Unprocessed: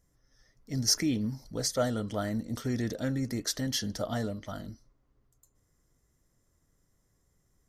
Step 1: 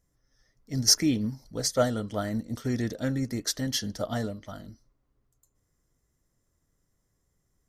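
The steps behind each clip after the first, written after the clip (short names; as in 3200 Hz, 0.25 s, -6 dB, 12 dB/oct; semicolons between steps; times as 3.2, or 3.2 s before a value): upward expander 1.5:1, over -40 dBFS; gain +6 dB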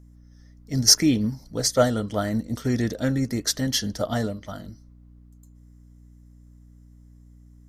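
hum 60 Hz, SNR 23 dB; gain +5 dB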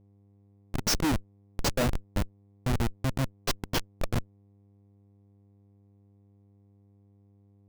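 Schmitt trigger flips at -18.5 dBFS; buzz 100 Hz, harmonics 5, -60 dBFS -8 dB/oct; sample leveller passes 1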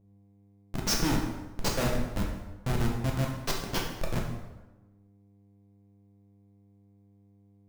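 plate-style reverb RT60 1.1 s, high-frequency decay 0.7×, DRR -1 dB; gain -3.5 dB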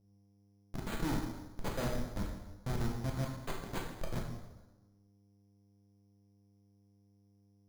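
careless resampling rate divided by 8×, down filtered, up hold; gain -7 dB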